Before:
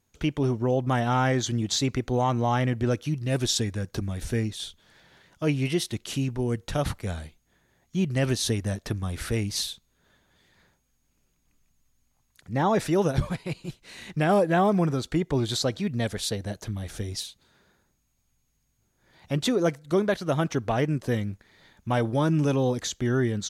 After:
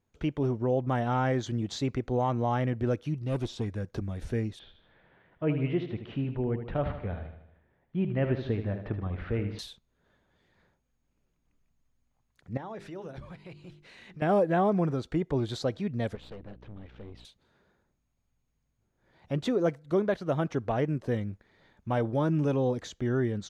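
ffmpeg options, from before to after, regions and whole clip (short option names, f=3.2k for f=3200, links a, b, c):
-filter_complex "[0:a]asettb=1/sr,asplit=3[a][b][c];[a]atrim=end=3.184[d];[b]atrim=start=3.18:end=3.68,asetpts=PTS-STARTPTS,afade=t=in:d=0.004:c=qsin,afade=t=out:st=0.496:d=0.004:c=qsin,acrossover=split=3100[e][f];[f]acompressor=threshold=-35dB:ratio=4:attack=1:release=60[g];[e][g]amix=inputs=2:normalize=0,equalizer=f=1.7k:t=o:w=0.23:g=-10,aeval=exprs='clip(val(0),-1,0.0668)':c=same[h];[c]atrim=start=3.676[i];[d][h]acrossfade=d=0.004:c1=hsin:c2=qsin[j];[j][i]acrossfade=d=0.004:c1=qsin:c2=hsin,asettb=1/sr,asplit=3[k][l][m];[k]atrim=end=4.594[n];[l]atrim=start=4.59:end=9.59,asetpts=PTS-STARTPTS,afade=t=in:d=0.004:c=qsin,afade=t=out:st=4.996:d=0.004:c=qsin,lowpass=f=2.9k:w=0.5412,lowpass=f=2.9k:w=1.3066,aecho=1:1:77|154|231|308|385|462:0.355|0.188|0.0997|0.0528|0.028|0.0148,atrim=end_sample=220500[o];[m]atrim=start=9.586[p];[n][o]acrossfade=d=0.004:c1=hsin:c2=qsin[q];[q][p]acrossfade=d=0.004:c1=qsin:c2=hsin,asettb=1/sr,asplit=3[r][s][t];[r]atrim=end=12.574[u];[s]atrim=start=12.57:end=14.22,asetpts=PTS-STARTPTS,afade=t=in:d=0.004:c=qsin,afade=t=out:st=1.646:d=0.004:c=qsin,equalizer=f=2.7k:t=o:w=2.5:g=5,bandreject=f=50:t=h:w=6,bandreject=f=100:t=h:w=6,bandreject=f=150:t=h:w=6,bandreject=f=200:t=h:w=6,bandreject=f=250:t=h:w=6,bandreject=f=300:t=h:w=6,bandreject=f=350:t=h:w=6,bandreject=f=400:t=h:w=6,acompressor=threshold=-42dB:ratio=2.5:attack=3.2:release=140:knee=1:detection=peak[v];[t]atrim=start=14.216[w];[u][v]acrossfade=d=0.004:c1=hsin:c2=qsin[x];[x][w]acrossfade=d=0.004:c1=qsin:c2=hsin,asettb=1/sr,asplit=3[y][z][aa];[y]atrim=end=16.154[ab];[z]atrim=start=16.15:end=17.25,asetpts=PTS-STARTPTS,afade=t=in:d=0.004:c=qsin,afade=t=out:st=1.096:d=0.004:c=qsin,highpass=110,equalizer=f=660:t=q:w=4:g=-9,equalizer=f=1.6k:t=q:w=4:g=-4,equalizer=f=2.8k:t=q:w=4:g=3,lowpass=f=3.4k:w=0.5412,lowpass=f=3.4k:w=1.3066,aeval=exprs='val(0)+0.00562*(sin(2*PI*60*n/s)+sin(2*PI*2*60*n/s)/2+sin(2*PI*3*60*n/s)/3+sin(2*PI*4*60*n/s)/4+sin(2*PI*5*60*n/s)/5)':c=same,aeval=exprs='(tanh(70.8*val(0)+0.7)-tanh(0.7))/70.8':c=same[ac];[aa]atrim=start=17.246[ad];[ab][ac]acrossfade=d=0.004:c1=hsin:c2=qsin[ae];[ae][ad]acrossfade=d=0.004:c1=qsin:c2=hsin,lowpass=f=1.9k:p=1,equalizer=f=510:w=1.5:g=2.5,volume=-4dB"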